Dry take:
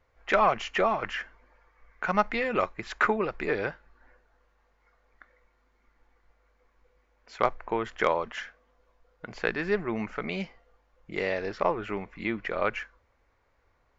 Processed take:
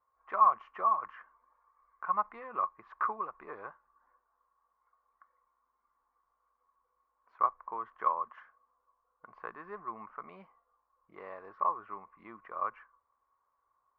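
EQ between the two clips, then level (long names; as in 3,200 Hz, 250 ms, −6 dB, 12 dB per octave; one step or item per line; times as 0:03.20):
low-pass with resonance 1,100 Hz, resonance Q 13
first difference
spectral tilt −3.5 dB per octave
0.0 dB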